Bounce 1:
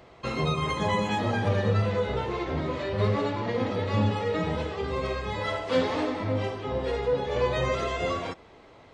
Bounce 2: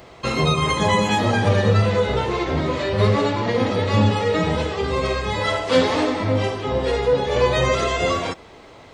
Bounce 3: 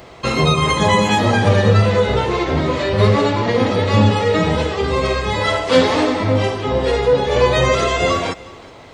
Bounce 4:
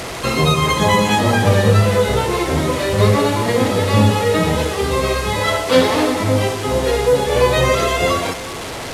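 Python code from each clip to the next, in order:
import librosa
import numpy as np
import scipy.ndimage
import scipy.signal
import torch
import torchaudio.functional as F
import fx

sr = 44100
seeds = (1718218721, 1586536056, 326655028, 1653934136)

y1 = fx.high_shelf(x, sr, hz=5100.0, db=9.0)
y1 = y1 * librosa.db_to_amplitude(7.5)
y2 = y1 + 10.0 ** (-22.0 / 20.0) * np.pad(y1, (int(365 * sr / 1000.0), 0))[:len(y1)]
y2 = y2 * librosa.db_to_amplitude(4.0)
y3 = fx.delta_mod(y2, sr, bps=64000, step_db=-21.5)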